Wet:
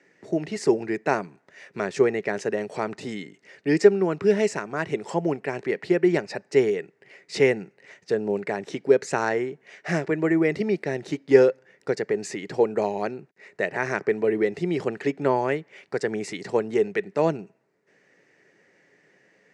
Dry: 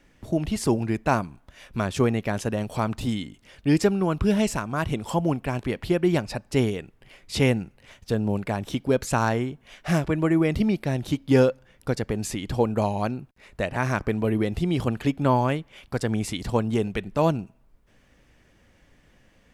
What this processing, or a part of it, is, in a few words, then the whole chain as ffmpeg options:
television speaker: -af "highpass=frequency=170:width=0.5412,highpass=frequency=170:width=1.3066,equalizer=frequency=240:width_type=q:width=4:gain=-9,equalizer=frequency=410:width_type=q:width=4:gain=10,equalizer=frequency=1100:width_type=q:width=4:gain=-5,equalizer=frequency=1900:width_type=q:width=4:gain=9,equalizer=frequency=3300:width_type=q:width=4:gain=-9,lowpass=frequency=7600:width=0.5412,lowpass=frequency=7600:width=1.3066,volume=-1dB"

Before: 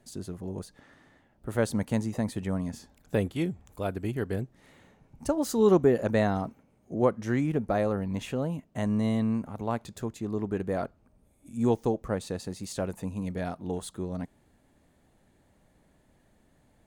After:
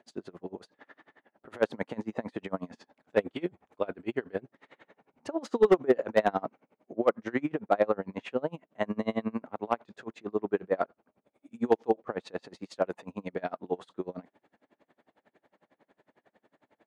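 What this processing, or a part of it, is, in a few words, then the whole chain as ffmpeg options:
helicopter radio: -af "highpass=360,lowpass=2700,aeval=exprs='val(0)*pow(10,-30*(0.5-0.5*cos(2*PI*11*n/s))/20)':channel_layout=same,asoftclip=type=hard:threshold=-21.5dB,volume=9dB"

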